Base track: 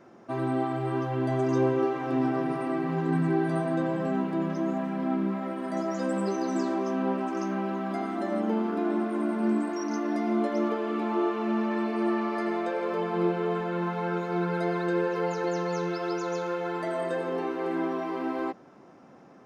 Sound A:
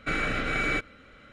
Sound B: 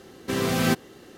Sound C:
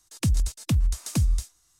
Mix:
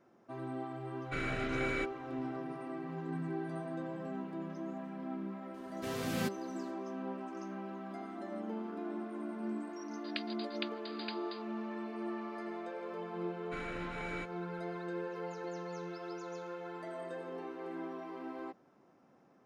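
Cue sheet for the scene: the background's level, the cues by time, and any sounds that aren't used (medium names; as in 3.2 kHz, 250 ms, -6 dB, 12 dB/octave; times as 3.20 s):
base track -13 dB
1.05 s: add A -10 dB
5.54 s: add B -13.5 dB
9.93 s: add C -2 dB + brick-wall FIR band-pass 1.3–4.9 kHz
13.45 s: add A -16 dB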